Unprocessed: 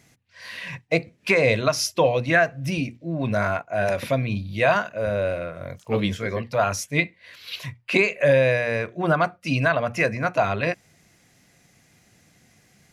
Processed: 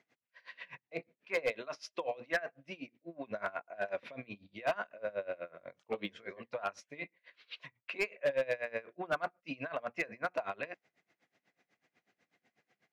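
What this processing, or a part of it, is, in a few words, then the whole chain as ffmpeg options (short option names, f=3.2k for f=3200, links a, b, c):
helicopter radio: -filter_complex "[0:a]asettb=1/sr,asplit=3[a][b][c];[a]atrim=end=1.504[d];[b]atrim=start=1.5:end=3.28,asetpts=PTS-STARTPTS,afade=t=in:d=0.004:c=qsin,afade=t=out:st=1.776:d=0.004:c=qsin,highpass=f=210:p=1[e];[c]atrim=start=3.276[f];[d][e]acrossfade=d=0.004:c1=hsin:c2=qsin[g];[g][f]acrossfade=d=0.004:c1=qsin:c2=hsin,highpass=330,lowpass=2.9k,aeval=exprs='val(0)*pow(10,-23*(0.5-0.5*cos(2*PI*8.1*n/s))/20)':c=same,asoftclip=type=hard:threshold=-17.5dB,volume=-7.5dB"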